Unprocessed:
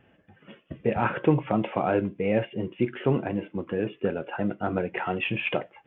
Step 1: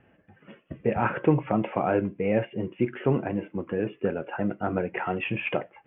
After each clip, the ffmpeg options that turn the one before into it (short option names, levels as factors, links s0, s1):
-af "lowpass=f=2700:w=0.5412,lowpass=f=2700:w=1.3066"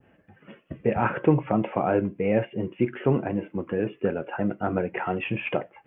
-af "adynamicequalizer=threshold=0.00794:dfrequency=2300:dqfactor=0.77:tfrequency=2300:tqfactor=0.77:attack=5:release=100:ratio=0.375:range=1.5:mode=cutabove:tftype=bell,volume=1.19"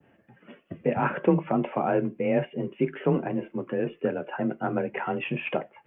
-af "afreqshift=26,volume=0.841"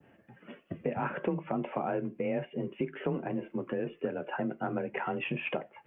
-af "acompressor=threshold=0.0282:ratio=3"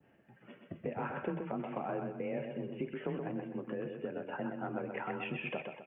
-af "aecho=1:1:127|254|381|508|635:0.531|0.207|0.0807|0.0315|0.0123,volume=0.501"